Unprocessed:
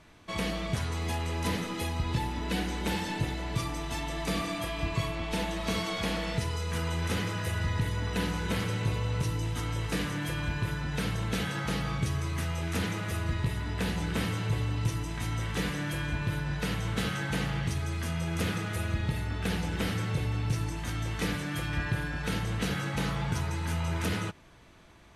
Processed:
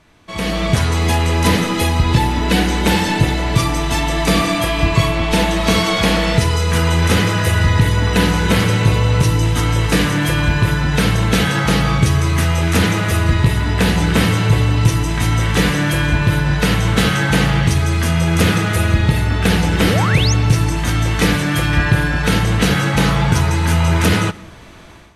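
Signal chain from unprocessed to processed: AGC gain up to 13 dB; painted sound rise, 19.8–20.34, 220–7000 Hz -25 dBFS; on a send: reverb RT60 0.55 s, pre-delay 85 ms, DRR 21 dB; on the sum: gain +3.5 dB

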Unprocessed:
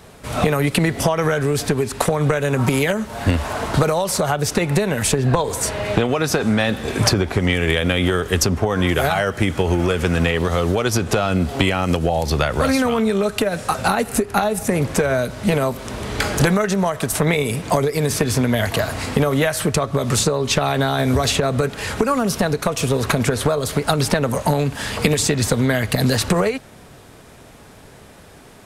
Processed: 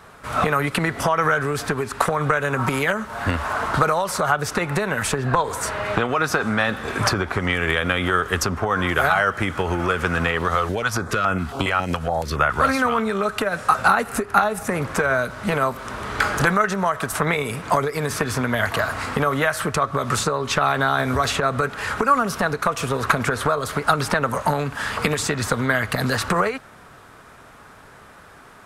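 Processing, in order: bell 1300 Hz +13.5 dB 1.2 oct; 10.55–12.58 stepped notch 7.2 Hz 230–4300 Hz; gain -6.5 dB

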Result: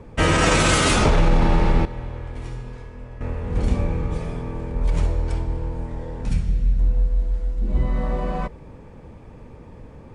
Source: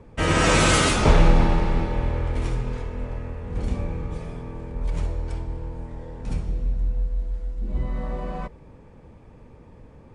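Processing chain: 1.85–3.21 resonator 120 Hz, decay 1.2 s, harmonics all, mix 80%; 6.28–6.79 band shelf 580 Hz -8.5 dB 2.4 oct; maximiser +12.5 dB; gain -7 dB

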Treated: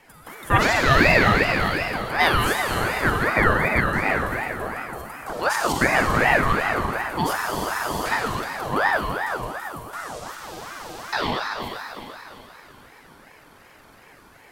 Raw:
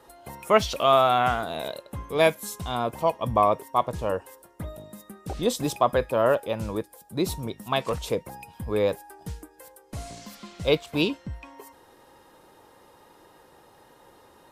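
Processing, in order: Schroeder reverb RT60 3.3 s, DRR -2.5 dB; stuck buffer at 7.36/10.43/13.37, samples 2048, times 14; ring modulator with a swept carrier 960 Hz, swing 45%, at 2.7 Hz; gain +3 dB

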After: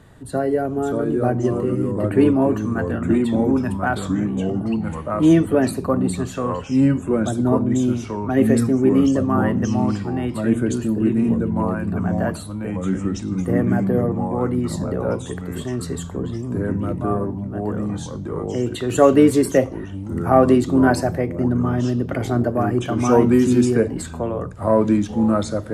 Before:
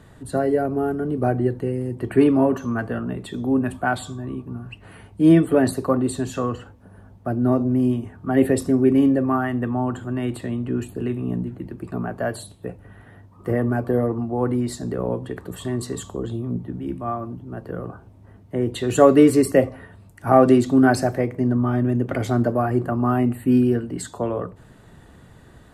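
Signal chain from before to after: echoes that change speed 0.516 s, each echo -3 st, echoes 2

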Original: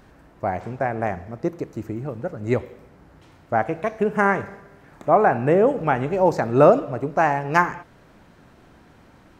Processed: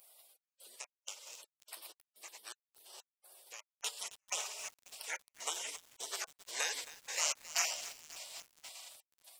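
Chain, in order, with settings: bell 6600 Hz +14 dB 0.62 oct; diffused feedback echo 0.466 s, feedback 43%, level -15 dB; limiter -10.5 dBFS, peak gain reduction 10 dB; step gate "xxx..xx.." 125 bpm -60 dB; 0.76–3.8 compressor 4:1, threshold -29 dBFS, peak gain reduction 10 dB; HPF 1200 Hz 24 dB/oct; high shelf 2100 Hz +9 dB; spectral gate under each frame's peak -20 dB weak; lo-fi delay 0.269 s, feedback 80%, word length 8-bit, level -14 dB; gain +7 dB

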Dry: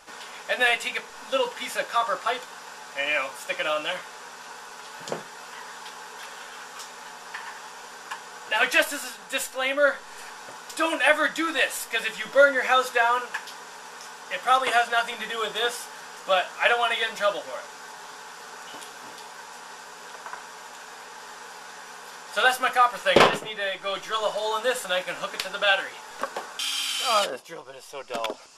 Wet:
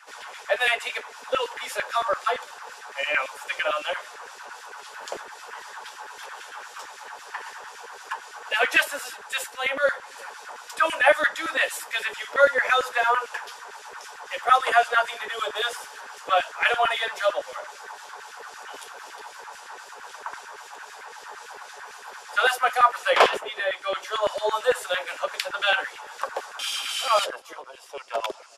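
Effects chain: harmonic tremolo 3.8 Hz, depth 50%, crossover 2300 Hz; LFO high-pass saw down 8.9 Hz 330–2000 Hz; outdoor echo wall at 64 m, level -29 dB

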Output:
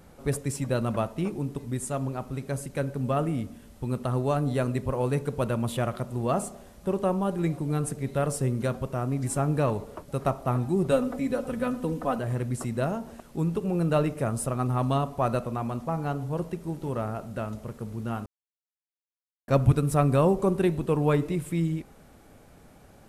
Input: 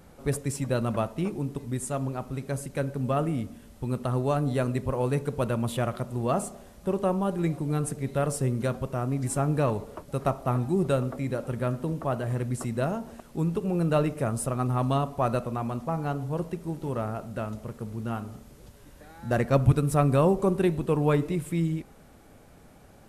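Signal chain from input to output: 10.91–12.19 comb 4 ms, depth 87%; 18.26–19.48 mute

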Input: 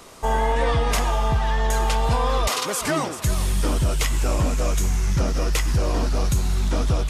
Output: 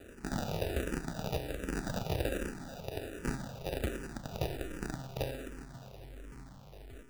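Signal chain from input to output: ending faded out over 1.92 s; in parallel at +1.5 dB: compressor 10:1, threshold -30 dBFS, peak gain reduction 14 dB; on the sum: dynamic EQ 4400 Hz, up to -5 dB, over -41 dBFS, Q 2; on a send: thin delay 94 ms, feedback 47%, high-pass 2000 Hz, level -10 dB; on the sum: companded quantiser 2-bit; resonator 130 Hz, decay 1.4 s, mix 90%; sample-and-hold 41×; endless phaser -1.3 Hz; gain -3 dB

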